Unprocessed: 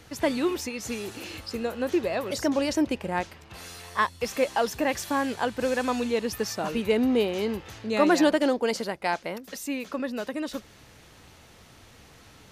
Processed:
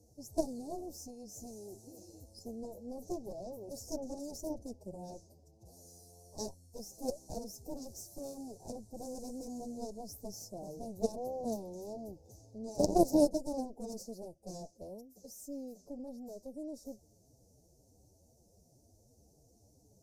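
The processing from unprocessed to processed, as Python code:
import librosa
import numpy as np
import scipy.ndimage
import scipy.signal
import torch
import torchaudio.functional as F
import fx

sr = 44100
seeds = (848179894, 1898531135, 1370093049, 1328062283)

y = fx.stretch_vocoder(x, sr, factor=1.6)
y = fx.cheby_harmonics(y, sr, harmonics=(3, 4, 6, 7), levels_db=(-11, -11, -15, -26), full_scale_db=-7.5)
y = scipy.signal.sosfilt(scipy.signal.ellip(3, 1.0, 40, [670.0, 5700.0], 'bandstop', fs=sr, output='sos'), y)
y = F.gain(torch.from_numpy(y), 3.5).numpy()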